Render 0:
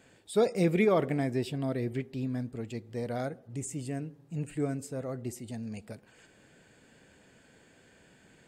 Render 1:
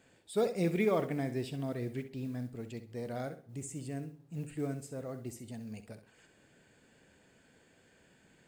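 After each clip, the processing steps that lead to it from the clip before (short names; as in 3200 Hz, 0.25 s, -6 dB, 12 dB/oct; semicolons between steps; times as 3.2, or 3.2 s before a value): modulation noise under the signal 30 dB; on a send: flutter echo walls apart 11.1 m, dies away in 0.33 s; on the sum: gain -5 dB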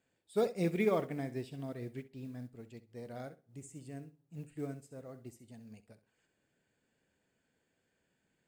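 upward expander 1.5:1, over -55 dBFS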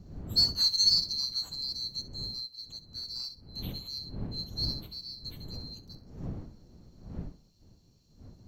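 band-swap scrambler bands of 4000 Hz; wind noise 160 Hz -49 dBFS; gain +5.5 dB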